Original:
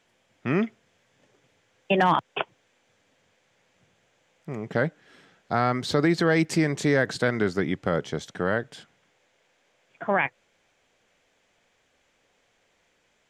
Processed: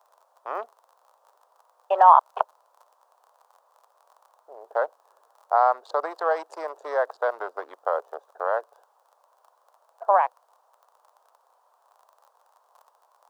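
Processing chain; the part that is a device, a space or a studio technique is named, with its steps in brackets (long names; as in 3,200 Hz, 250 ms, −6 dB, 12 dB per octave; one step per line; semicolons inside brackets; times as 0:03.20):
adaptive Wiener filter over 41 samples
vinyl LP (tape wow and flutter 20 cents; surface crackle 35 per second −36 dBFS; pink noise bed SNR 35 dB)
Butterworth high-pass 560 Hz 36 dB per octave
high shelf with overshoot 1,500 Hz −13 dB, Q 3
level +3.5 dB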